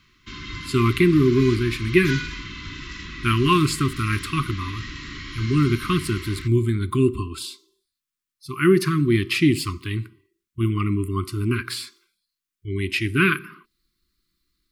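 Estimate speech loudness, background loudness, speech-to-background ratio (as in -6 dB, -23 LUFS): -22.0 LUFS, -34.0 LUFS, 12.0 dB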